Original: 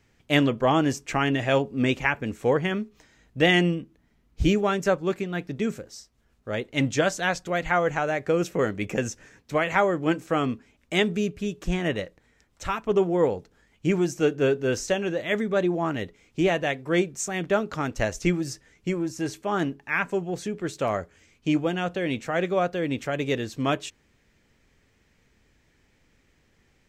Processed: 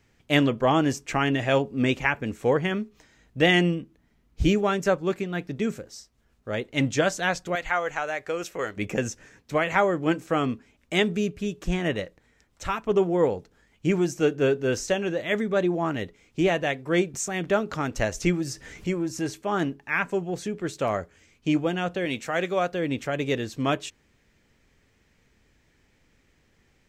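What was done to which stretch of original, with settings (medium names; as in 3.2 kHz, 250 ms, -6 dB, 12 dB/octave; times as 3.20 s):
7.55–8.77 s: peaking EQ 170 Hz -14.5 dB 2.6 oct
17.14–19.31 s: upward compressor, threshold -28 dBFS
22.05–22.72 s: tilt EQ +1.5 dB/octave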